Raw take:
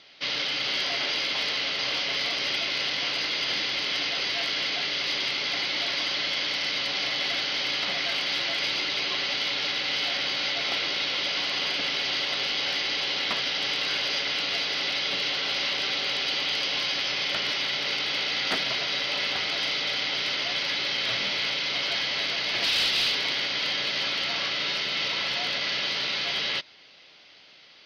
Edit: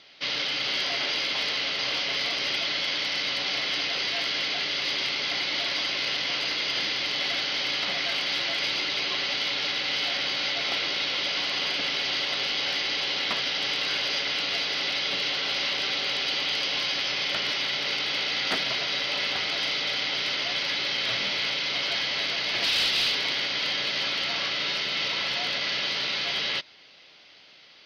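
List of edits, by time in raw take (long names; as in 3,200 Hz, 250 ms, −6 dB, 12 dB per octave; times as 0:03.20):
0:02.64–0:03.87: swap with 0:06.13–0:07.14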